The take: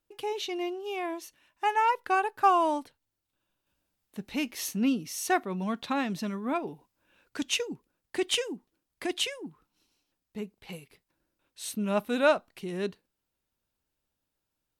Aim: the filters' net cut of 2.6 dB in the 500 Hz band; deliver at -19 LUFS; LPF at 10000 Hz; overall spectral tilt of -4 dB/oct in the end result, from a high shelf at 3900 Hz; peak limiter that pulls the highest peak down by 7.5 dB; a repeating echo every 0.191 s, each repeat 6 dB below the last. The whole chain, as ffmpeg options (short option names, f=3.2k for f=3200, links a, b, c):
-af "lowpass=10k,equalizer=f=500:t=o:g=-3.5,highshelf=f=3.9k:g=-3.5,alimiter=limit=-21dB:level=0:latency=1,aecho=1:1:191|382|573|764|955|1146:0.501|0.251|0.125|0.0626|0.0313|0.0157,volume=14dB"